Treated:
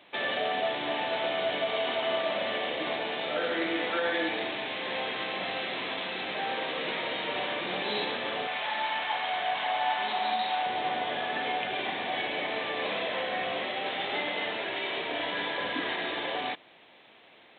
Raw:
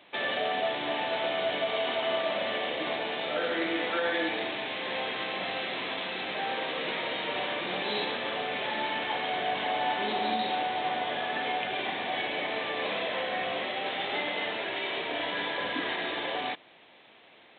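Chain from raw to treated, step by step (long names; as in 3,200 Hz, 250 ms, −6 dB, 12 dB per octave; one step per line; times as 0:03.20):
0:08.47–0:10.66: low shelf with overshoot 580 Hz −8.5 dB, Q 1.5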